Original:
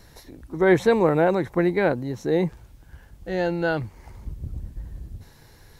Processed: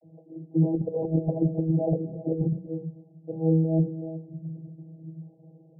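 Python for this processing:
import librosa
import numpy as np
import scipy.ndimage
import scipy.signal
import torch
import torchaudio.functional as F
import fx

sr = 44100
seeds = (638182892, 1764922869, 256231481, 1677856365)

y = x + 10.0 ** (-17.5 / 20.0) * np.pad(x, (int(373 * sr / 1000.0), 0))[:len(x)]
y = fx.vocoder(y, sr, bands=32, carrier='saw', carrier_hz=161.0)
y = fx.over_compress(y, sr, threshold_db=-23.0, ratio=-0.5)
y = scipy.signal.sosfilt(scipy.signal.butter(12, 730.0, 'lowpass', fs=sr, output='sos'), y)
y = fx.hum_notches(y, sr, base_hz=60, count=8)
y = y + 10.0 ** (-20.5 / 20.0) * np.pad(y, (int(258 * sr / 1000.0), 0))[:len(y)]
y = y * 10.0 ** (2.0 / 20.0)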